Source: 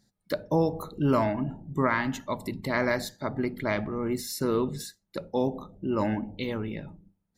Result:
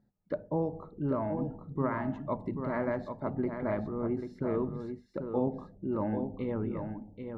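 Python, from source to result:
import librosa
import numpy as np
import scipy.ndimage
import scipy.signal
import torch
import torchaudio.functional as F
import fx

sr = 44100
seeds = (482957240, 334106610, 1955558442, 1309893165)

p1 = scipy.signal.sosfilt(scipy.signal.butter(2, 1100.0, 'lowpass', fs=sr, output='sos'), x)
p2 = fx.rider(p1, sr, range_db=4, speed_s=0.5)
p3 = p2 + fx.echo_single(p2, sr, ms=787, db=-7.0, dry=0)
y = p3 * librosa.db_to_amplitude(-4.5)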